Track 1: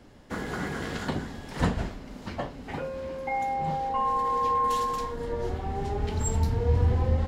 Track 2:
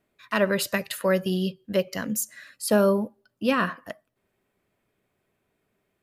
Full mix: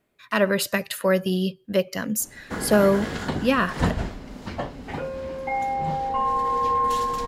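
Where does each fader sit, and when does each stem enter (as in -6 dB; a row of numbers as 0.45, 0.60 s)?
+3.0, +2.0 dB; 2.20, 0.00 s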